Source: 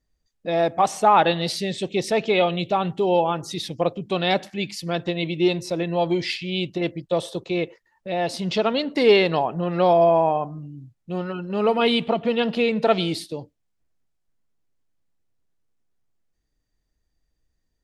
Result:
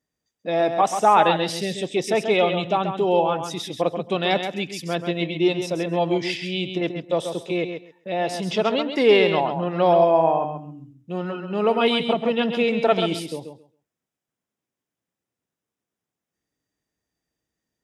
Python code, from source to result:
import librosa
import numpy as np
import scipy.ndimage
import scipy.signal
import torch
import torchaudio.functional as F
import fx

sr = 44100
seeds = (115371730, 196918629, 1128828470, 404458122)

y = scipy.signal.sosfilt(scipy.signal.butter(2, 150.0, 'highpass', fs=sr, output='sos'), x)
y = fx.notch(y, sr, hz=4300.0, q=5.8)
y = fx.echo_feedback(y, sr, ms=134, feedback_pct=16, wet_db=-7.5)